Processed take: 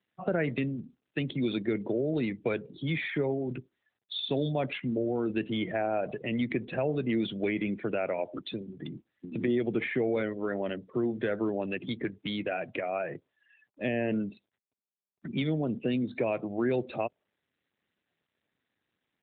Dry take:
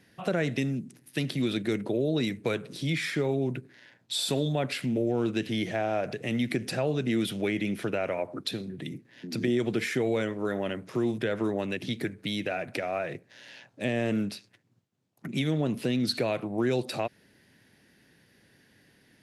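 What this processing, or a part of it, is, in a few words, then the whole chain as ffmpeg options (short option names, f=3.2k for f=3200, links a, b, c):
mobile call with aggressive noise cancelling: -filter_complex "[0:a]asplit=3[a][b][c];[a]afade=t=out:st=8.33:d=0.02[d];[b]bandreject=f=6k:w=6,afade=t=in:st=8.33:d=0.02,afade=t=out:st=9.25:d=0.02[e];[c]afade=t=in:st=9.25:d=0.02[f];[d][e][f]amix=inputs=3:normalize=0,highpass=f=130:p=1,afftdn=nr=33:nf=-39" -ar 8000 -c:a libopencore_amrnb -b:a 12200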